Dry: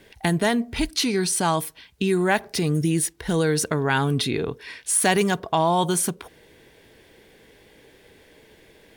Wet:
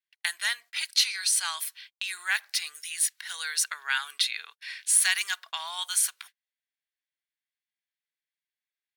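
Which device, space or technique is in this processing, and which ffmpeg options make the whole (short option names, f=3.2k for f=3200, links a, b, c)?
headphones lying on a table: -af "highpass=f=1.5k:w=0.5412,highpass=f=1.5k:w=1.3066,equalizer=f=4.2k:t=o:w=0.22:g=4,agate=range=-39dB:threshold=-47dB:ratio=16:detection=peak"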